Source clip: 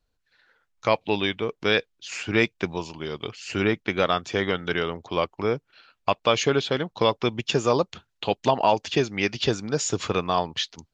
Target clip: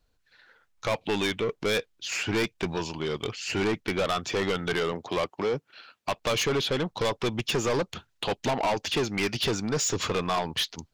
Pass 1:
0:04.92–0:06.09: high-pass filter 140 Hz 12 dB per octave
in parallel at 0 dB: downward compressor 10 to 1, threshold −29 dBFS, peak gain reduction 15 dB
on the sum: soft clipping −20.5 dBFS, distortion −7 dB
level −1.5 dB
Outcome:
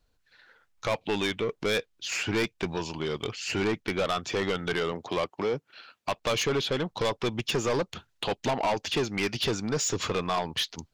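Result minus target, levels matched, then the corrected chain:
downward compressor: peak gain reduction +8 dB
0:04.92–0:06.09: high-pass filter 140 Hz 12 dB per octave
in parallel at 0 dB: downward compressor 10 to 1, threshold −20 dBFS, peak gain reduction 7 dB
on the sum: soft clipping −20.5 dBFS, distortion −5 dB
level −1.5 dB

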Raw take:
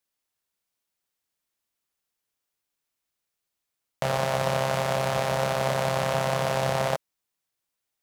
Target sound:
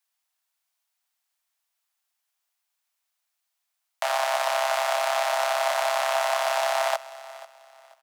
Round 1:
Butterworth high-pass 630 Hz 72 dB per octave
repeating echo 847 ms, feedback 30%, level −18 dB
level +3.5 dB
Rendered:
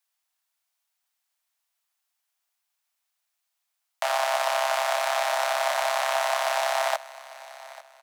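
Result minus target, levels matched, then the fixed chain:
echo 358 ms late
Butterworth high-pass 630 Hz 72 dB per octave
repeating echo 489 ms, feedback 30%, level −18 dB
level +3.5 dB

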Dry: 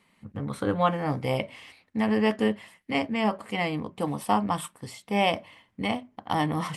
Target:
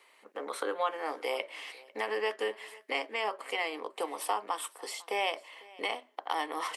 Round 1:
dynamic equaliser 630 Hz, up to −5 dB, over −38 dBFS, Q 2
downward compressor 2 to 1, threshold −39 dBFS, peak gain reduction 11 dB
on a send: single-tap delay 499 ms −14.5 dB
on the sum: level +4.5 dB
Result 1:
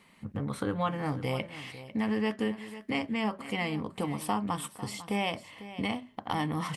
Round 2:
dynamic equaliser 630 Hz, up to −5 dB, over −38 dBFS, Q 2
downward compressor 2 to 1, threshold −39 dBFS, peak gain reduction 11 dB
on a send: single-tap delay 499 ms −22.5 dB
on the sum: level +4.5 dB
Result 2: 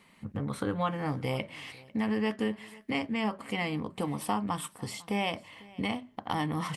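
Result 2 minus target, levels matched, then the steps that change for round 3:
500 Hz band −3.0 dB
add after dynamic equaliser: Butterworth high-pass 380 Hz 36 dB per octave

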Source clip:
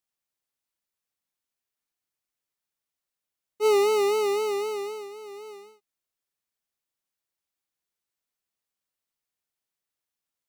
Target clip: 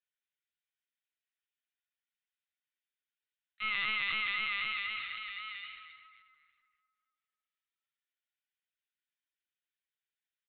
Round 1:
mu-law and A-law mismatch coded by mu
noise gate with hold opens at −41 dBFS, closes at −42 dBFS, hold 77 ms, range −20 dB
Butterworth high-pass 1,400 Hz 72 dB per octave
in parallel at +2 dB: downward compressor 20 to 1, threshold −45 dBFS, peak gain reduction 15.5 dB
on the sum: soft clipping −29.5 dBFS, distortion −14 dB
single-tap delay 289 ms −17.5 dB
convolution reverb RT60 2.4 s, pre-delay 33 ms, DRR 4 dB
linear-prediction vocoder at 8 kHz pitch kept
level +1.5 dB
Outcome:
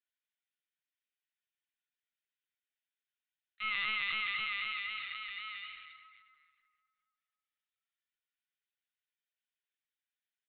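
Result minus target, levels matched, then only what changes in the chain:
downward compressor: peak gain reduction +8.5 dB
change: downward compressor 20 to 1, threshold −36 dBFS, peak gain reduction 7 dB

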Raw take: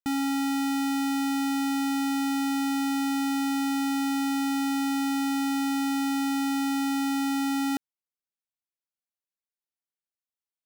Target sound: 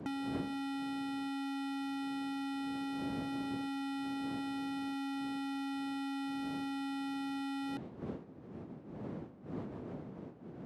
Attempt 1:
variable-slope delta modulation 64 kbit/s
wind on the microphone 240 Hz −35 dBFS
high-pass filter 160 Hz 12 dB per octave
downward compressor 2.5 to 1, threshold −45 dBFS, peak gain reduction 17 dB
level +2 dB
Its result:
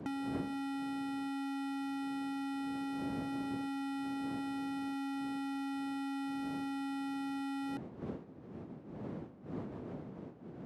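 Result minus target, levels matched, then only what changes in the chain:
4,000 Hz band −4.0 dB
add after high-pass filter: dynamic equaliser 3,600 Hz, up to +5 dB, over −54 dBFS, Q 1.5

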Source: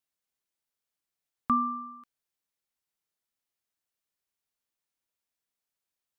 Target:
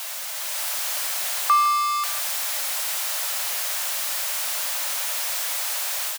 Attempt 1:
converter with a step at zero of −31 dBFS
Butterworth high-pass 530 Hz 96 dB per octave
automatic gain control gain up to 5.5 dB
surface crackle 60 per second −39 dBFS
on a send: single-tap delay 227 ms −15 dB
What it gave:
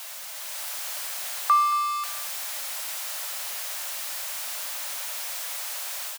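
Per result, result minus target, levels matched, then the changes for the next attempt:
echo 67 ms late; converter with a step at zero: distortion −5 dB
change: single-tap delay 160 ms −15 dB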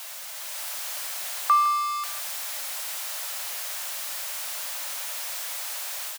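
converter with a step at zero: distortion −5 dB
change: converter with a step at zero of −24.5 dBFS

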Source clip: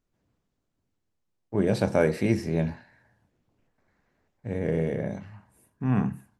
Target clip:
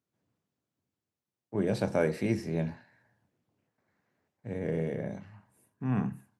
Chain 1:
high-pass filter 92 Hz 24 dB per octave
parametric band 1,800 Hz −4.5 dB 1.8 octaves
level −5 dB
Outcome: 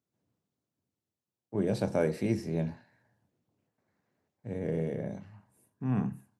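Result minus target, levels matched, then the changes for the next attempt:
2,000 Hz band −4.0 dB
remove: parametric band 1,800 Hz −4.5 dB 1.8 octaves

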